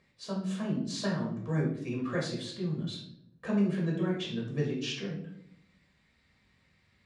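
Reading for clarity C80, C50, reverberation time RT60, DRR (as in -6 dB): 9.0 dB, 4.5 dB, 0.70 s, -3.5 dB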